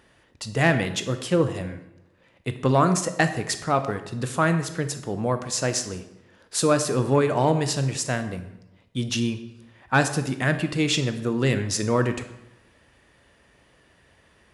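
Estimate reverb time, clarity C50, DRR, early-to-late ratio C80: 0.90 s, 11.0 dB, 8.5 dB, 13.0 dB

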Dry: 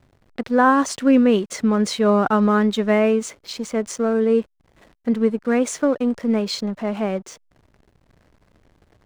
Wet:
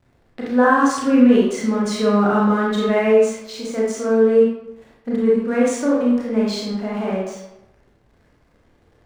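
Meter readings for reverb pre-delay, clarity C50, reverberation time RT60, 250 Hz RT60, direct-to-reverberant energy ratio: 26 ms, 0.0 dB, 0.90 s, 0.90 s, -5.0 dB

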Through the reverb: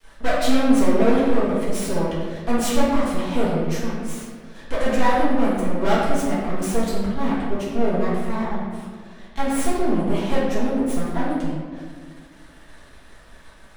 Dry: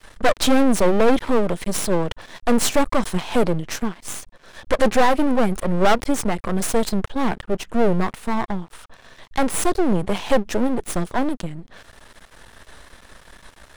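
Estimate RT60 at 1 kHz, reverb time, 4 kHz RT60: 1.5 s, 1.8 s, 0.95 s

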